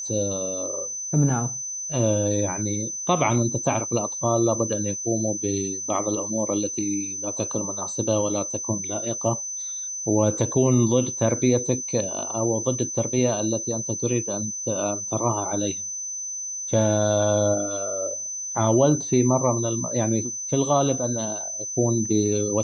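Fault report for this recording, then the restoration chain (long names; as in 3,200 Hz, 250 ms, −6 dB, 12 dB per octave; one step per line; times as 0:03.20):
whistle 6,100 Hz −29 dBFS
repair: notch filter 6,100 Hz, Q 30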